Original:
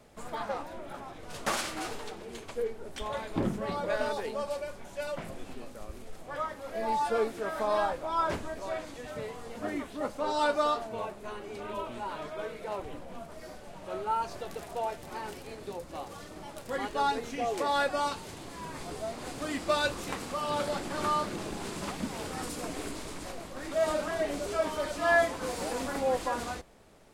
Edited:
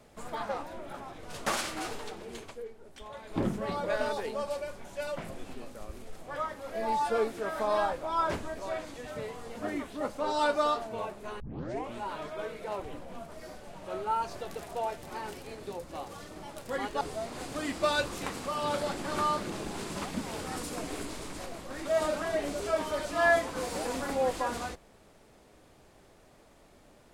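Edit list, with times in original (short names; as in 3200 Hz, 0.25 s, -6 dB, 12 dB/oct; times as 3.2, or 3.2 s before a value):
2.42–3.4 dip -9.5 dB, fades 0.17 s
11.4 tape start 0.53 s
17.01–18.87 cut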